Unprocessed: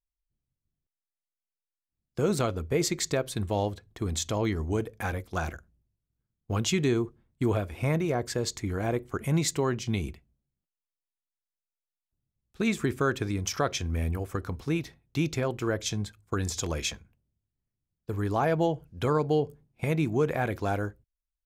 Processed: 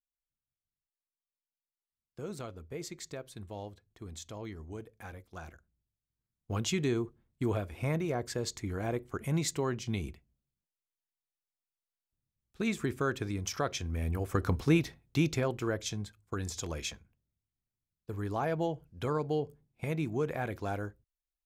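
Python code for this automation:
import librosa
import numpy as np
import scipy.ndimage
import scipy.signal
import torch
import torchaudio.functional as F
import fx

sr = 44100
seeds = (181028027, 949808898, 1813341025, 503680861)

y = fx.gain(x, sr, db=fx.line((5.48, -14.5), (6.54, -5.0), (14.0, -5.0), (14.51, 5.0), (16.03, -6.5)))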